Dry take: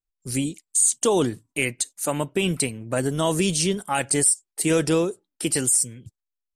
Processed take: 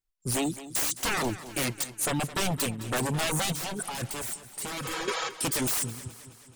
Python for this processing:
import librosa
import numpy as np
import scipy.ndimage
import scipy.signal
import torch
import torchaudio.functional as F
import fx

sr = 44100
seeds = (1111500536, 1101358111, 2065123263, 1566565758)

y = 10.0 ** (-24.5 / 20.0) * (np.abs((x / 10.0 ** (-24.5 / 20.0) + 3.0) % 4.0 - 2.0) - 1.0)
y = fx.spec_repair(y, sr, seeds[0], start_s=4.85, length_s=0.41, low_hz=420.0, high_hz=7300.0, source='before')
y = fx.dereverb_blind(y, sr, rt60_s=0.65)
y = fx.over_compress(y, sr, threshold_db=-37.0, ratio=-1.0, at=(3.52, 5.08))
y = fx.echo_warbled(y, sr, ms=214, feedback_pct=57, rate_hz=2.8, cents=52, wet_db=-15.0)
y = y * librosa.db_to_amplitude(2.5)